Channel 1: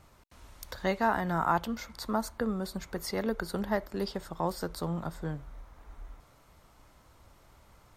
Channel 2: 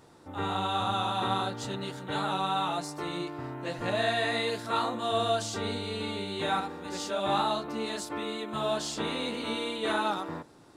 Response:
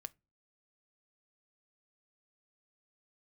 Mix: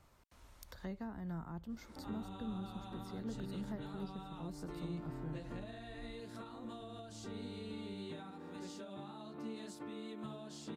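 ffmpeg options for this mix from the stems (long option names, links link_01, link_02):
-filter_complex "[0:a]volume=-8dB[link_01];[1:a]highpass=140,acompressor=threshold=-32dB:ratio=6,adelay=1700,volume=-3dB[link_02];[link_01][link_02]amix=inputs=2:normalize=0,acrossover=split=300[link_03][link_04];[link_04]acompressor=threshold=-51dB:ratio=10[link_05];[link_03][link_05]amix=inputs=2:normalize=0"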